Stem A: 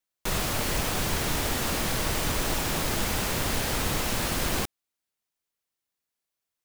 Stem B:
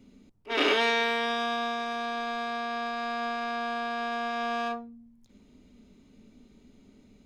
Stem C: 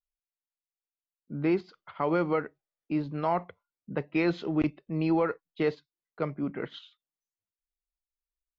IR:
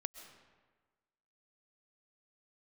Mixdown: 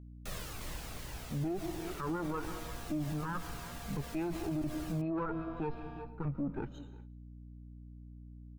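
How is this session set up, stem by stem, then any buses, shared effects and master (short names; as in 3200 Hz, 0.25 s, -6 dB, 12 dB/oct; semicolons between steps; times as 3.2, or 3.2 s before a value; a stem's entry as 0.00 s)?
-10.5 dB, 0.00 s, no bus, no send, echo send -6 dB, cascading flanger falling 1.5 Hz; auto duck -11 dB, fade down 0.95 s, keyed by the third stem
-12.0 dB, 1.30 s, bus A, no send, no echo send, low-pass opened by the level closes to 470 Hz, open at -24 dBFS; compressor 2.5:1, threshold -42 dBFS, peak gain reduction 14 dB
+1.5 dB, 0.00 s, bus A, send -4.5 dB, echo send -20.5 dB, minimum comb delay 0.75 ms; spectral expander 1.5:1
bus A: 0.0 dB, high shelf 3100 Hz -12 dB; limiter -26 dBFS, peak gain reduction 11.5 dB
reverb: on, RT60 1.4 s, pre-delay 90 ms
echo: echo 0.359 s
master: gate -59 dBFS, range -21 dB; hum 60 Hz, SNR 17 dB; limiter -28.5 dBFS, peak gain reduction 11 dB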